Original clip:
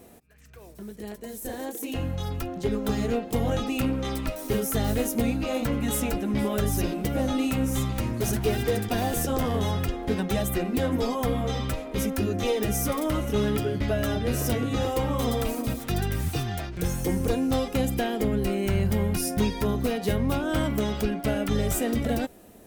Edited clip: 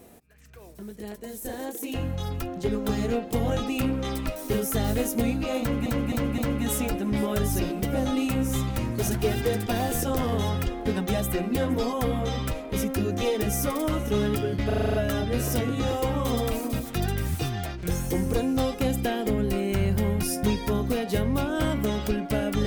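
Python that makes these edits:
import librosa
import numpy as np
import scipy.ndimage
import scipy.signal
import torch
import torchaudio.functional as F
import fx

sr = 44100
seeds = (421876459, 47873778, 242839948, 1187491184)

y = fx.edit(x, sr, fx.repeat(start_s=5.6, length_s=0.26, count=4),
    fx.stutter(start_s=13.88, slice_s=0.04, count=8), tone=tone)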